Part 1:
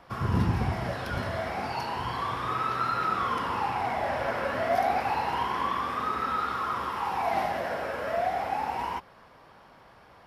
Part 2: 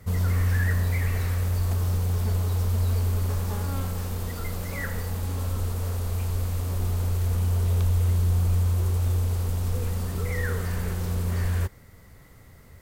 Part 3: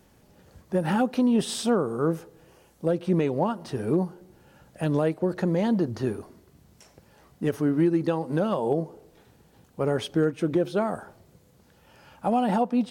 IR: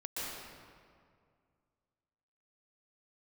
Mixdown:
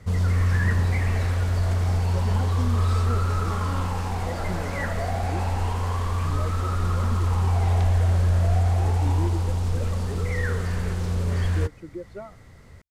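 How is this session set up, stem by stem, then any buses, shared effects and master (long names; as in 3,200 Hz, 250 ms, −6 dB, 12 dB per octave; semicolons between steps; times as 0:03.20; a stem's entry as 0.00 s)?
−9.0 dB, 0.30 s, send −5 dB, no processing
+2.0 dB, 0.00 s, no send, no processing
−9.0 dB, 1.40 s, no send, spectral dynamics exaggerated over time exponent 2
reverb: on, RT60 2.1 s, pre-delay 115 ms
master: low-pass filter 7,300 Hz 12 dB per octave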